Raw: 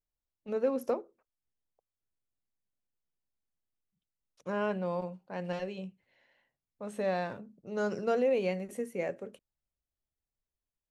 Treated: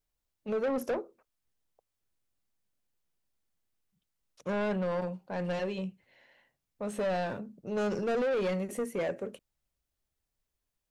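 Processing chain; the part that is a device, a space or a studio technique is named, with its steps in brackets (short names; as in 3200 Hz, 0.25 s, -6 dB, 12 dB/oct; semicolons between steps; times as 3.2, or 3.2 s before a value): saturation between pre-emphasis and de-emphasis (high shelf 3900 Hz +9 dB; soft clip -33 dBFS, distortion -8 dB; high shelf 3900 Hz -9 dB); gain +6.5 dB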